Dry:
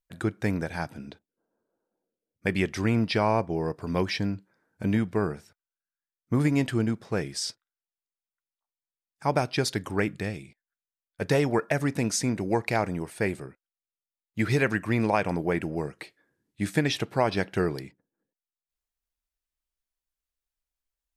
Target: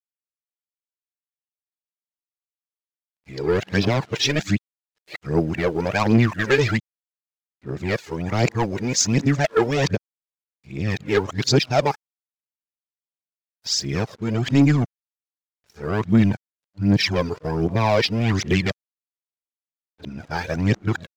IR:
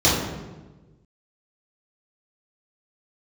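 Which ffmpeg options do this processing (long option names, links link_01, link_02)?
-af "areverse,highshelf=frequency=3900:gain=-3,aresample=16000,asoftclip=type=tanh:threshold=-20.5dB,aresample=44100,aphaser=in_gain=1:out_gain=1:delay=2.5:decay=0.57:speed=1.3:type=triangular,aeval=exprs='sgn(val(0))*max(abs(val(0))-0.00119,0)':channel_layout=same,adynamicequalizer=threshold=0.00708:dfrequency=2800:dqfactor=0.7:tfrequency=2800:tqfactor=0.7:attack=5:release=100:ratio=0.375:range=2.5:mode=boostabove:tftype=highshelf,volume=6.5dB"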